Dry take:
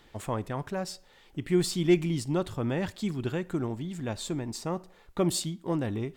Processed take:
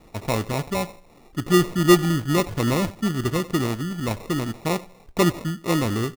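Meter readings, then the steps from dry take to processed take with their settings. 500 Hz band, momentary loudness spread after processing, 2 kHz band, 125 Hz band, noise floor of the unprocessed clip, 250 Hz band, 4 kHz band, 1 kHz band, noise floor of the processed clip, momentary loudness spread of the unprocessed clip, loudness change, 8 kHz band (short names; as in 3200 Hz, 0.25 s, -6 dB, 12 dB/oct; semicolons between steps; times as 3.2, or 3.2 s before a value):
+7.0 dB, 11 LU, +11.5 dB, +7.5 dB, -59 dBFS, +7.0 dB, +7.5 dB, +11.0 dB, -52 dBFS, 11 LU, +7.5 dB, +5.5 dB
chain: polynomial smoothing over 25 samples; echo 93 ms -19.5 dB; sample-and-hold 28×; gain +7.5 dB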